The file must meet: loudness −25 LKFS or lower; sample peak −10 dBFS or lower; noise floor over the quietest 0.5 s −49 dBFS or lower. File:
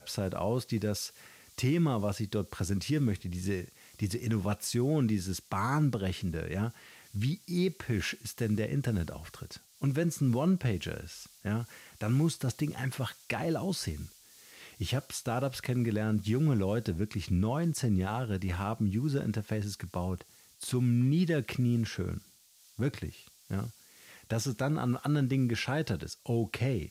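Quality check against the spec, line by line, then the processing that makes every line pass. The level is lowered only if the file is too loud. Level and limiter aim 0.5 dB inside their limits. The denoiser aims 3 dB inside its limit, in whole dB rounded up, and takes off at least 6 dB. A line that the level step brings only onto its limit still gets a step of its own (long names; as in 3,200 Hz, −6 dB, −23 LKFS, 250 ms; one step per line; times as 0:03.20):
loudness −32.0 LKFS: in spec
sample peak −19.0 dBFS: in spec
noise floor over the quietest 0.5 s −61 dBFS: in spec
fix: no processing needed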